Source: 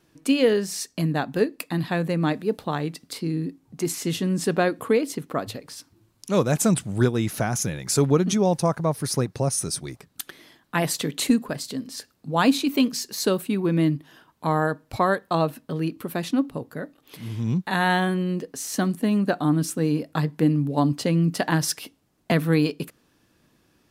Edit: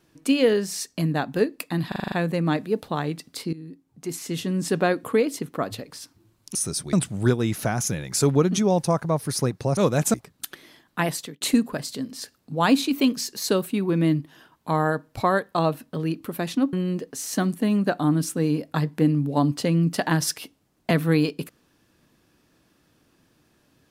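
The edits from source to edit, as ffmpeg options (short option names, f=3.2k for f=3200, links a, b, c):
-filter_complex "[0:a]asplit=14[a][b][c][d][e][f][g][h][i][j][k][l][m][n];[a]atrim=end=1.922[o];[b]atrim=start=1.878:end=1.922[p];[c]atrim=start=1.878:end=1.922[q];[d]atrim=start=1.878:end=1.922[r];[e]atrim=start=1.878:end=1.922[s];[f]atrim=start=1.878:end=1.922[t];[g]atrim=start=1.878:end=3.29,asetpts=PTS-STARTPTS,afade=t=out:st=1.408:d=0.004:c=hsin:silence=0.16788[u];[h]atrim=start=3.29:end=6.312,asetpts=PTS-STARTPTS,afade=t=in:d=1.24:silence=0.16788[v];[i]atrim=start=9.518:end=9.902[w];[j]atrim=start=6.678:end=9.522[x];[k]atrim=start=6.308:end=6.682[y];[l]atrim=start=9.898:end=11.17,asetpts=PTS-STARTPTS,afade=t=out:st=0.862:d=0.41[z];[m]atrim=start=11.17:end=16.492,asetpts=PTS-STARTPTS,afade=t=in:d=0.004:c=hsin[aa];[n]atrim=start=18.138[ab];[o][p]acrossfade=d=0.004:c1=hsin:c2=hsin[ac];[ac][q]acrossfade=d=0.004:c1=hsin:c2=hsin[ad];[ad][r]acrossfade=d=0.004:c1=hsin:c2=hsin[ae];[ae][s]acrossfade=d=0.004:c1=hsin:c2=hsin[af];[af][t]acrossfade=d=0.004:c1=hsin:c2=hsin[ag];[u][v]concat=n=2:v=0:a=1[ah];[ag][ah]acrossfade=d=0.004:c1=hsin:c2=hsin[ai];[ai][w]acrossfade=d=0.004:c1=hsin:c2=hsin[aj];[aj][x]acrossfade=d=0.004:c1=hsin:c2=hsin[ak];[ak][y]acrossfade=d=0.004:c1=hsin:c2=hsin[al];[z][aa]concat=n=2:v=0:a=1[am];[al][am]acrossfade=d=0.004:c1=hsin:c2=hsin[an];[an][ab]acrossfade=d=0.004:c1=hsin:c2=hsin"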